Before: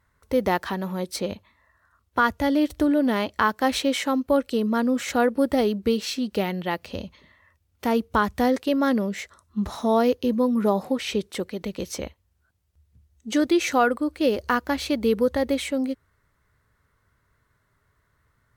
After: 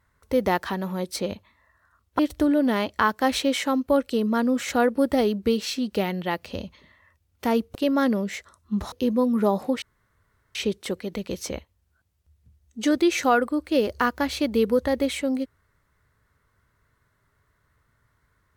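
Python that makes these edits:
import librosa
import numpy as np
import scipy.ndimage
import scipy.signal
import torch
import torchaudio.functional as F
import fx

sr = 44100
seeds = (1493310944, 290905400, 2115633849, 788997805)

y = fx.edit(x, sr, fx.cut(start_s=2.19, length_s=0.4),
    fx.cut(start_s=8.15, length_s=0.45),
    fx.cut(start_s=9.77, length_s=0.37),
    fx.insert_room_tone(at_s=11.04, length_s=0.73), tone=tone)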